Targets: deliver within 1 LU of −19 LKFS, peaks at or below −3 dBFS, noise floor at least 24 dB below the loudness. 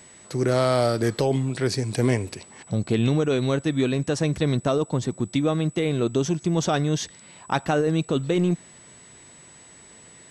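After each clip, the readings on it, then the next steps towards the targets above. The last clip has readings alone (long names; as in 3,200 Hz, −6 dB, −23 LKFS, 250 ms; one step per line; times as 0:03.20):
interfering tone 7,900 Hz; level of the tone −48 dBFS; integrated loudness −24.0 LKFS; sample peak −8.5 dBFS; target loudness −19.0 LKFS
→ notch filter 7,900 Hz, Q 30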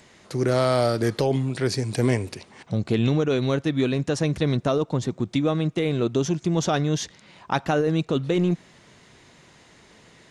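interfering tone none found; integrated loudness −24.0 LKFS; sample peak −8.5 dBFS; target loudness −19.0 LKFS
→ level +5 dB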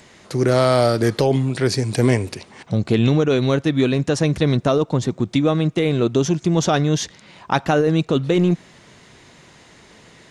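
integrated loudness −19.0 LKFS; sample peak −3.5 dBFS; background noise floor −49 dBFS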